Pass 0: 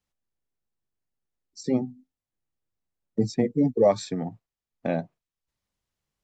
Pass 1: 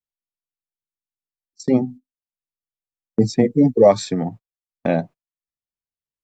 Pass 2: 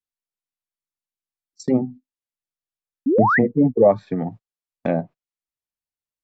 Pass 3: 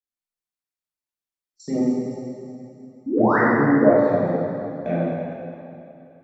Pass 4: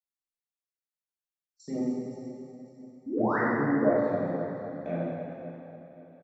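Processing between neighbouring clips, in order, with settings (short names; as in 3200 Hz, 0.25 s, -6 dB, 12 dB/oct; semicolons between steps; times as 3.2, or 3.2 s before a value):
gate -41 dBFS, range -25 dB; gain +7.5 dB
treble ducked by the level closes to 1200 Hz, closed at -14 dBFS; painted sound rise, 3.06–3.39, 240–2100 Hz -15 dBFS; gain -2 dB
plate-style reverb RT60 2.7 s, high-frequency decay 0.9×, DRR -10 dB; gain -10.5 dB
feedback echo 0.53 s, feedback 41%, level -15.5 dB; gain -9 dB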